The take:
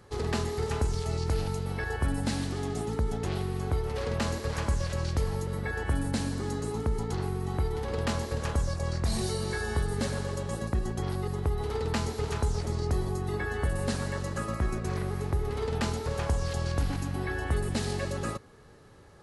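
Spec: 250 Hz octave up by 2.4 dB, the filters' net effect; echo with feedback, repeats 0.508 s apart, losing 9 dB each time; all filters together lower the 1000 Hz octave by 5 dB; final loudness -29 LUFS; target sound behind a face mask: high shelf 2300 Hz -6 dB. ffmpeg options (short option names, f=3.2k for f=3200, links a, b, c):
-af "equalizer=f=250:t=o:g=3.5,equalizer=f=1k:t=o:g=-5.5,highshelf=f=2.3k:g=-6,aecho=1:1:508|1016|1524|2032:0.355|0.124|0.0435|0.0152,volume=1.5dB"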